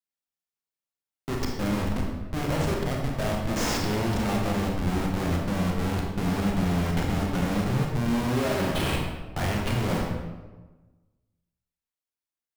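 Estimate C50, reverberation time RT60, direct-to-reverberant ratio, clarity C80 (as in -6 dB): 2.0 dB, 1.3 s, -1.0 dB, 4.0 dB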